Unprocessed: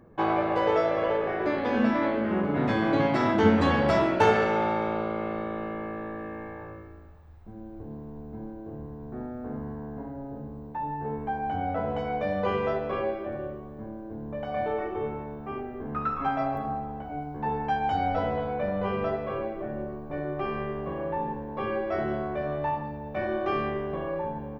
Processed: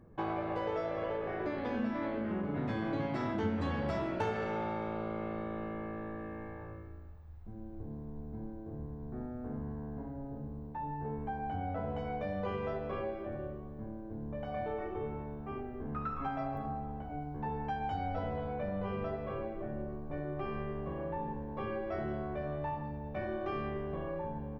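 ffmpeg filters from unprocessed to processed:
-filter_complex "[0:a]asettb=1/sr,asplit=3[a][b][c];[a]atrim=end=7.814[d];[b]atrim=start=7.81:end=9.26,asetpts=PTS-STARTPTS,afade=t=in:d=0.004:c=qsin,afade=t=out:st=1.446:d=0.004:c=qsin,bandreject=f=2.8k:w=12[e];[c]atrim=start=9.256[f];[d][e]acrossfade=d=0.004:c1=hsin:c2=qsin[g];[g][f]acrossfade=d=0.004:c1=qsin:c2=hsin,lowshelf=f=160:g=9.5,acompressor=threshold=-26dB:ratio=2.5,volume=-7.5dB"

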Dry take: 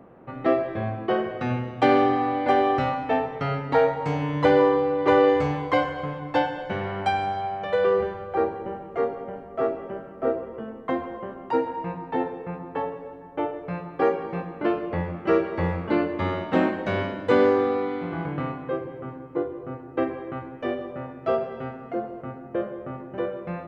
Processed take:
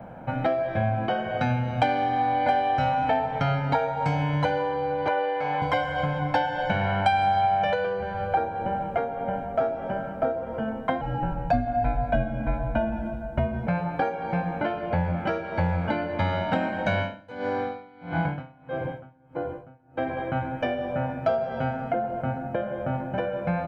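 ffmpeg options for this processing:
-filter_complex "[0:a]asettb=1/sr,asplit=3[a][b][c];[a]atrim=end=5.084[d];[b]atrim=start=5.08:end=5.62,asetpts=PTS-STARTPTS,afade=t=in:d=0.004:c=qsin,afade=t=out:st=0.536:d=0.004:c=qsin,highpass=330,lowpass=3.2k[e];[c]atrim=start=5.616[f];[d][e]acrossfade=d=0.004:c1=hsin:c2=qsin[g];[g][f]acrossfade=d=0.004:c1=qsin:c2=hsin,asettb=1/sr,asplit=3[h][i][j];[h]atrim=end=11.014[k];[i]atrim=start=11.01:end=13.67,asetpts=PTS-STARTPTS,afade=t=in:d=0.004:c=qsin,afade=t=out:st=2.656:d=0.004:c=qsin,afreqshift=-220[l];[j]atrim=start=13.666[m];[k][l]acrossfade=d=0.004:c1=hsin:c2=qsin[n];[n][m]acrossfade=d=0.004:c1=qsin:c2=hsin,asettb=1/sr,asplit=3[o][p][q];[o]atrim=end=16.984[r];[p]atrim=start=16.98:end=20.17,asetpts=PTS-STARTPTS,afade=t=in:d=0.004:c=qsin,afade=t=out:st=3.186:d=0.004:c=qsin,aeval=exprs='val(0)*pow(10,-29*(0.5-0.5*cos(2*PI*1.6*n/s))/20)':c=same[s];[q]atrim=start=20.166[t];[r][s]acrossfade=d=0.004:c1=hsin:c2=qsin[u];[u][t]acrossfade=d=0.004:c1=qsin:c2=hsin,adynamicequalizer=threshold=0.0126:dfrequency=290:dqfactor=4.8:tfrequency=290:tqfactor=4.8:attack=5:release=100:ratio=0.375:range=2:mode=cutabove:tftype=bell,acompressor=threshold=-31dB:ratio=6,aecho=1:1:1.3:0.76,volume=7.5dB"

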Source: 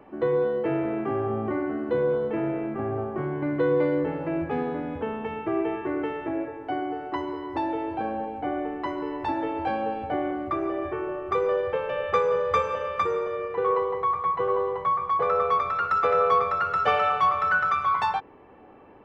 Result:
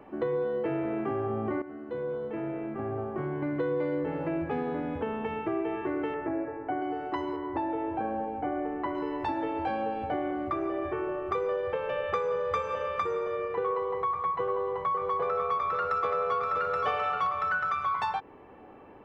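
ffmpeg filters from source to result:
-filter_complex "[0:a]asettb=1/sr,asplit=3[a][b][c];[a]atrim=end=6.144[d];[b]atrim=start=6.14:end=6.82,asetpts=PTS-STARTPTS,afade=t=in:d=0.004:c=qsin,afade=t=out:st=0.676:d=0.004:c=qsin,lowpass=f=2.2k:w=0.5412,lowpass=f=2.2k:w=1.3066[e];[c]atrim=start=6.816[f];[d][e]acrossfade=d=0.004:c1=hsin:c2=qsin[g];[g][f]acrossfade=d=0.004:c1=qsin:c2=hsin,asettb=1/sr,asplit=3[h][i][j];[h]atrim=end=7.364[k];[i]atrim=start=7.36:end=8.95,asetpts=PTS-STARTPTS,afade=t=in:d=0.004:c=qsin,afade=t=out:st=1.586:d=0.004:c=qsin,lowpass=2.2k[l];[j]atrim=start=8.946[m];[k][l]acrossfade=d=0.004:c1=hsin:c2=qsin[n];[n][m]acrossfade=d=0.004:c1=qsin:c2=hsin,asettb=1/sr,asplit=3[o][p][q];[o]atrim=end=14.424[r];[p]atrim=start=14.42:end=17.27,asetpts=PTS-STARTPTS,afade=t=in:d=0.004:c=qsin,afade=t=out:st=2.846:d=0.004:c=qsin,aecho=1:1:523:0.531,atrim=end_sample=125685[s];[q]atrim=start=17.266[t];[r][s]acrossfade=d=0.004:c1=hsin:c2=qsin[u];[u][t]acrossfade=d=0.004:c1=qsin:c2=hsin,asplit=2[v][w];[v]atrim=end=1.62,asetpts=PTS-STARTPTS,afade=t=out:st=1.616:d=0.004:c=hsin:silence=0.199526[x];[w]atrim=start=1.62,asetpts=PTS-STARTPTS,afade=t=in:d=2.32:silence=0.199526[y];[x][y]concat=n=2:v=0:a=1,acompressor=threshold=-28dB:ratio=3"

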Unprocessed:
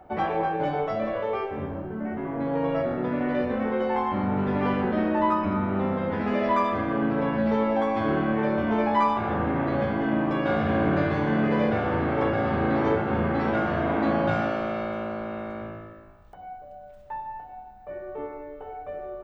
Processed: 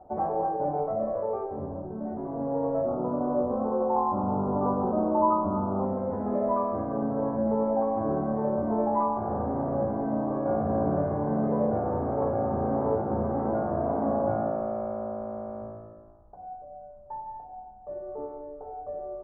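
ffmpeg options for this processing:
-filter_complex "[0:a]asettb=1/sr,asplit=3[a][b][c];[a]atrim=end=2.884[d];[b]atrim=start=2.88:end=5.85,asetpts=PTS-STARTPTS,afade=t=in:d=0.004:c=qsin,afade=t=out:st=2.966:d=0.004:c=qsin,highshelf=f=1.6k:t=q:w=3:g=-10.5[e];[c]atrim=start=5.846[f];[d][e]acrossfade=d=0.004:c1=hsin:c2=qsin[g];[g][f]acrossfade=d=0.004:c1=qsin:c2=hsin,lowpass=f=1k:w=0.5412,lowpass=f=1k:w=1.3066,equalizer=f=650:t=o:w=0.81:g=4,bandreject=f=164.4:t=h:w=4,bandreject=f=328.8:t=h:w=4,volume=-3.5dB"

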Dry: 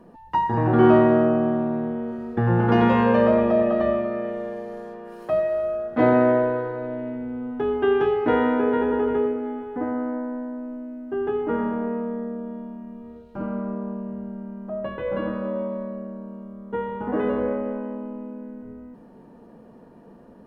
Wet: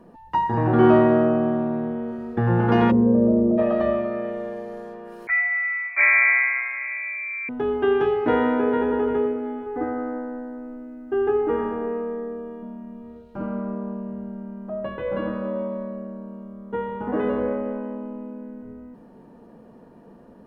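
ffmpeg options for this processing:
-filter_complex "[0:a]asplit=3[a][b][c];[a]afade=t=out:st=2.9:d=0.02[d];[b]lowpass=f=330:t=q:w=1.9,afade=t=in:st=2.9:d=0.02,afade=t=out:st=3.57:d=0.02[e];[c]afade=t=in:st=3.57:d=0.02[f];[d][e][f]amix=inputs=3:normalize=0,asettb=1/sr,asplit=3[g][h][i];[g]atrim=end=5.274[j];[h]atrim=start=5.27:end=7.49,asetpts=PTS-STARTPTS,afade=t=in:d=0.004:c=qsin,afade=t=out:st=2.216:d=0.004:c=qsin,lowpass=f=2.2k:t=q:w=0.5098,lowpass=f=2.2k:t=q:w=0.6013,lowpass=f=2.2k:t=q:w=0.9,lowpass=f=2.2k:t=q:w=2.563,afreqshift=-2600[k];[i]atrim=start=7.486[l];[j][k]acrossfade=d=0.004:c1=hsin:c2=qsin[m];[m][l]acrossfade=d=0.004:c1=qsin:c2=hsin,asettb=1/sr,asplit=3[n][o][p];[n]atrim=end=9.664[q];[o]atrim=start=9.66:end=12.63,asetpts=PTS-STARTPTS,afade=t=in:d=0.004:c=qsin,afade=t=out:st=2.966:d=0.004:c=qsin,aecho=1:1:2.5:0.65,atrim=end_sample=130977[r];[p]atrim=start=12.626[s];[q][r]acrossfade=d=0.004:c1=hsin:c2=qsin[t];[t][s]acrossfade=d=0.004:c1=qsin:c2=hsin"

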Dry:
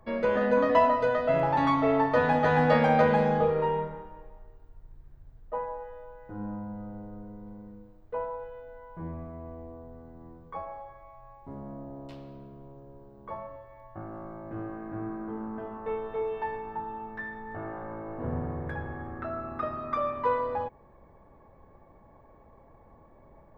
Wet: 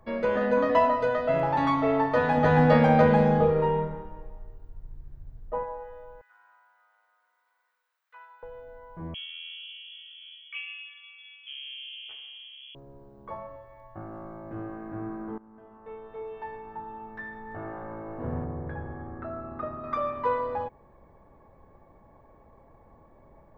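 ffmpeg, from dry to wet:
-filter_complex "[0:a]asettb=1/sr,asplit=3[a][b][c];[a]atrim=end=2.374[d];[b]atrim=start=2.37:end=5.63,asetpts=PTS-STARTPTS,afade=t=in:d=0.004:c=qsin,afade=t=out:st=3.256:d=0.004:c=qsin,lowshelf=f=350:g=7.5[e];[c]atrim=start=5.626[f];[d][e]acrossfade=d=0.004:c1=hsin:c2=qsin[g];[g][f]acrossfade=d=0.004:c1=qsin:c2=hsin,asettb=1/sr,asplit=3[h][i][j];[h]atrim=end=6.214[k];[i]atrim=start=6.21:end=8.43,asetpts=PTS-STARTPTS,afade=t=in:d=0.004:c=qsin,afade=t=out:st=2.216:d=0.004:c=qsin,highpass=f=1.4k:w=0.5412,highpass=f=1.4k:w=1.3066[l];[j]atrim=start=8.426[m];[k][l]acrossfade=d=0.004:c1=hsin:c2=qsin[n];[n][m]acrossfade=d=0.004:c1=qsin:c2=hsin,asettb=1/sr,asplit=3[o][p][q];[o]atrim=end=9.144[r];[p]atrim=start=9.14:end=12.75,asetpts=PTS-STARTPTS,afade=t=in:d=0.004:c=qsin,afade=t=out:st=3.606:d=0.004:c=qsin,lowpass=f=2.9k:t=q:w=0.5098,lowpass=f=2.9k:t=q:w=0.6013,lowpass=f=2.9k:t=q:w=0.9,lowpass=f=2.9k:t=q:w=2.563,afreqshift=-3400[s];[q]atrim=start=12.746[t];[r][s]acrossfade=d=0.004:c1=hsin:c2=qsin[u];[u][t]acrossfade=d=0.004:c1=qsin:c2=hsin,asettb=1/sr,asplit=3[v][w][x];[v]atrim=end=18.444[y];[w]atrim=start=18.44:end=19.84,asetpts=PTS-STARTPTS,afade=t=in:d=0.004:c=qsin,afade=t=out:st=1.396:d=0.004:c=qsin,lowpass=f=1.1k:p=1[z];[x]atrim=start=19.836[aa];[y][z]acrossfade=d=0.004:c1=hsin:c2=qsin[ab];[ab][aa]acrossfade=d=0.004:c1=qsin:c2=hsin,asplit=2[ac][ad];[ac]atrim=end=15.38,asetpts=PTS-STARTPTS,afade=t=out:st=15.376:d=0.004:c=hsin:silence=0.112202[ae];[ad]atrim=start=15.38,asetpts=PTS-STARTPTS,afade=t=in:d=2.3:silence=0.112202[af];[ae][af]concat=n=2:v=0:a=1"

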